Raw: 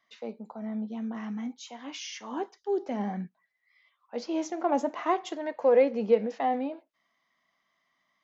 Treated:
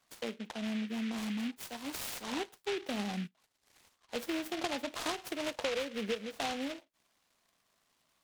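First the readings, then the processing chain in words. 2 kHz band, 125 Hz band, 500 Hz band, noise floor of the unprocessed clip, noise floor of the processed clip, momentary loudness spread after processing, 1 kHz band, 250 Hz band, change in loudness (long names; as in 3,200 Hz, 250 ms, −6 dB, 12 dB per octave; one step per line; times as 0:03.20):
+2.0 dB, can't be measured, −11.5 dB, −77 dBFS, −77 dBFS, 6 LU, −10.0 dB, −4.5 dB, −7.5 dB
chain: downward compressor 12 to 1, threshold −32 dBFS, peak gain reduction 16.5 dB
short delay modulated by noise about 2,300 Hz, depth 0.16 ms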